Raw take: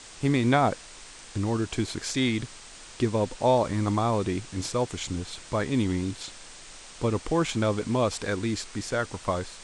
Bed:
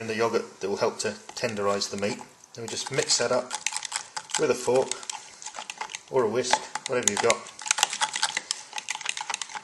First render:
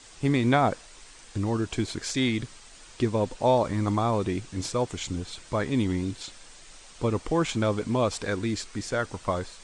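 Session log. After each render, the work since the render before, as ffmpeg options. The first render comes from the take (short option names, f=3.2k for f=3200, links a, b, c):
-af "afftdn=nr=6:nf=-47"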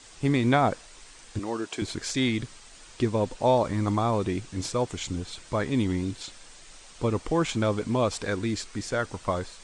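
-filter_complex "[0:a]asettb=1/sr,asplit=3[a][b][c];[a]atrim=end=1.394[d];[b]atrim=start=1.39:end=1.82,asetpts=PTS-STARTPTS,afade=t=in:d=0.004:c=qsin,afade=t=out:st=0.426:d=0.004:c=qsin,highpass=320[e];[c]atrim=start=1.816[f];[d][e]acrossfade=d=0.004:c1=hsin:c2=qsin[g];[g][f]acrossfade=d=0.004:c1=qsin:c2=hsin"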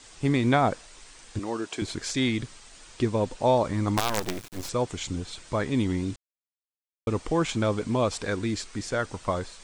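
-filter_complex "[0:a]asettb=1/sr,asplit=3[a][b][c];[a]atrim=end=3.974[d];[b]atrim=start=3.97:end=4.69,asetpts=PTS-STARTPTS,afade=t=in:d=0.004:c=qsin,afade=t=out:st=0.716:d=0.004:c=qsin,acrusher=bits=4:dc=4:mix=0:aa=0.000001[e];[c]atrim=start=4.686[f];[d][e]acrossfade=d=0.004:c1=hsin:c2=qsin[g];[g][f]acrossfade=d=0.004:c1=qsin:c2=hsin,asplit=3[h][i][j];[h]atrim=end=6.16,asetpts=PTS-STARTPTS,afade=t=out:st=6.156:d=0.004:c=hsin[k];[i]atrim=start=6.16:end=7.07,asetpts=PTS-STARTPTS,volume=0[l];[j]atrim=start=7.07,asetpts=PTS-STARTPTS,afade=t=in:d=0.004:c=hsin[m];[k][l][m]concat=n=3:v=0:a=1"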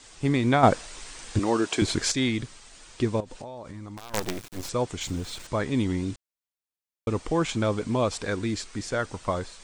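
-filter_complex "[0:a]asettb=1/sr,asplit=3[a][b][c];[a]atrim=end=0.634[d];[b]atrim=start=0.63:end=2.12,asetpts=PTS-STARTPTS,afade=t=in:d=0.004:c=qsin,afade=t=out:st=1.486:d=0.004:c=qsin,acontrast=88[e];[c]atrim=start=2.116[f];[d][e]acrossfade=d=0.004:c1=hsin:c2=qsin[g];[g][f]acrossfade=d=0.004:c1=qsin:c2=hsin,asettb=1/sr,asplit=3[h][i][j];[h]atrim=end=3.204[k];[i]atrim=start=3.2:end=4.14,asetpts=PTS-STARTPTS,afade=t=in:d=0.004:c=qsin,afade=t=out:st=0.936:d=0.004:c=qsin,acompressor=threshold=-35dB:ratio=16:attack=3.2:release=140:knee=1:detection=peak[l];[j]atrim=start=4.136[m];[k][l]acrossfade=d=0.004:c1=hsin:c2=qsin[n];[n][m]acrossfade=d=0.004:c1=qsin:c2=hsin,asettb=1/sr,asplit=3[o][p][q];[o]atrim=end=5.014[r];[p]atrim=start=5.01:end=5.47,asetpts=PTS-STARTPTS,afade=t=in:d=0.004:c=qsin,afade=t=out:st=0.456:d=0.004:c=qsin,aeval=exprs='val(0)+0.5*0.00841*sgn(val(0))':c=same[s];[q]atrim=start=5.466[t];[r][s]acrossfade=d=0.004:c1=hsin:c2=qsin[u];[u][t]acrossfade=d=0.004:c1=qsin:c2=hsin"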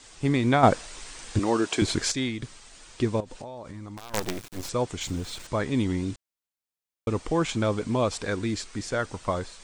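-filter_complex "[0:a]asplit=2[a][b];[a]atrim=end=2.42,asetpts=PTS-STARTPTS,afade=t=out:st=2:d=0.42:silence=0.421697[c];[b]atrim=start=2.42,asetpts=PTS-STARTPTS,afade=t=in:d=0.004:c=hsin:silence=0.421697[d];[c][d]concat=n=2:v=0:a=1"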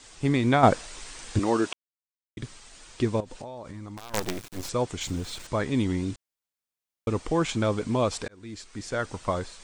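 -filter_complex "[0:a]asplit=4[a][b][c][d];[a]atrim=end=1.73,asetpts=PTS-STARTPTS,afade=t=out:st=1.726:d=0.004:c=hsin[e];[b]atrim=start=1.73:end=2.37,asetpts=PTS-STARTPTS,volume=0[f];[c]atrim=start=2.37:end=8.28,asetpts=PTS-STARTPTS,afade=t=in:d=0.004:c=hsin,afade=t=out:st=5.906:d=0.004:c=hsin[g];[d]atrim=start=8.28,asetpts=PTS-STARTPTS,afade=t=in:d=0.82[h];[e][f][g][h]concat=n=4:v=0:a=1"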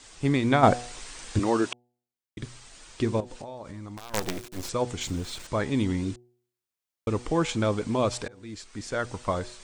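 -af "bandreject=f=121.5:t=h:w=4,bandreject=f=243:t=h:w=4,bandreject=f=364.5:t=h:w=4,bandreject=f=486:t=h:w=4,bandreject=f=607.5:t=h:w=4,bandreject=f=729:t=h:w=4,bandreject=f=850.5:t=h:w=4"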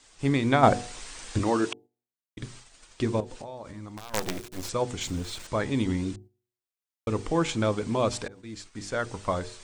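-af "bandreject=f=50:t=h:w=6,bandreject=f=100:t=h:w=6,bandreject=f=150:t=h:w=6,bandreject=f=200:t=h:w=6,bandreject=f=250:t=h:w=6,bandreject=f=300:t=h:w=6,bandreject=f=350:t=h:w=6,bandreject=f=400:t=h:w=6,bandreject=f=450:t=h:w=6,agate=range=-7dB:threshold=-47dB:ratio=16:detection=peak"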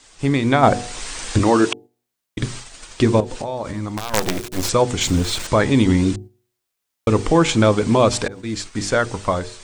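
-filter_complex "[0:a]dynaudnorm=f=210:g=7:m=7dB,asplit=2[a][b];[b]alimiter=limit=-16.5dB:level=0:latency=1:release=414,volume=3dB[c];[a][c]amix=inputs=2:normalize=0"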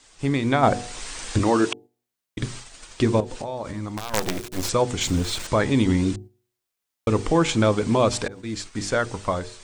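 -af "volume=-4.5dB"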